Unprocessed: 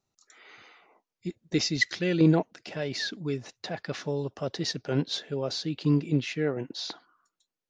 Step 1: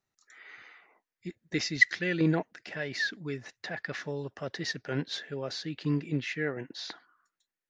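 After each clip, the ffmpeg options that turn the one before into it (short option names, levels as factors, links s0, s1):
-af "equalizer=f=1800:w=2:g=12,volume=0.531"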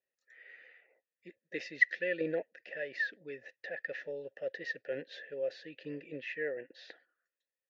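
-filter_complex "[0:a]asplit=3[s0][s1][s2];[s0]bandpass=f=530:t=q:w=8,volume=1[s3];[s1]bandpass=f=1840:t=q:w=8,volume=0.501[s4];[s2]bandpass=f=2480:t=q:w=8,volume=0.355[s5];[s3][s4][s5]amix=inputs=3:normalize=0,volume=1.88"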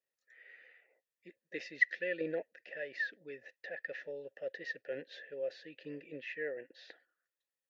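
-af "lowshelf=f=96:g=-7,volume=0.75"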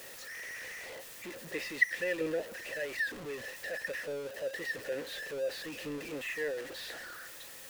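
-af "aeval=exprs='val(0)+0.5*0.00944*sgn(val(0))':c=same,volume=1.19"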